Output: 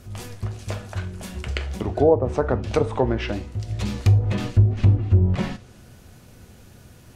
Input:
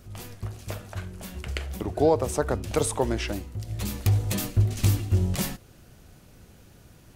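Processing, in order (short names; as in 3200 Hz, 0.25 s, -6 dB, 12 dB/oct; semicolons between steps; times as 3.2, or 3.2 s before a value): treble ducked by the level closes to 730 Hz, closed at -18 dBFS; reverb, pre-delay 3 ms, DRR 10 dB; gain +4 dB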